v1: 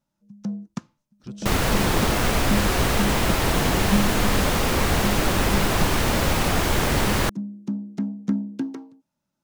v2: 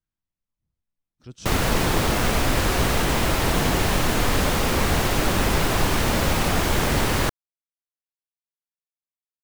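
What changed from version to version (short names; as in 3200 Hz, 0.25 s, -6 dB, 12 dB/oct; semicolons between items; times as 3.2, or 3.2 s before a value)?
first sound: muted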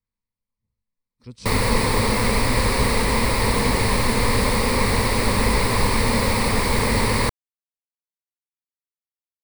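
master: add ripple EQ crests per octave 0.93, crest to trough 11 dB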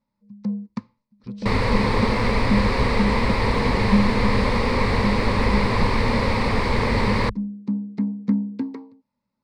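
first sound: unmuted; master: add air absorption 150 m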